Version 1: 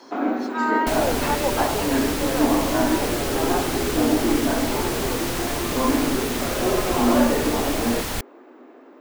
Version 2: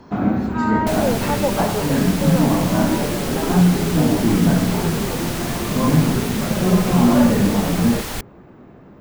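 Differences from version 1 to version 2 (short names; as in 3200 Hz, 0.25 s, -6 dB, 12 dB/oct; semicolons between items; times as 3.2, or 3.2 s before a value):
speech: add tilt -4 dB/oct; first sound: remove steep high-pass 250 Hz 72 dB/oct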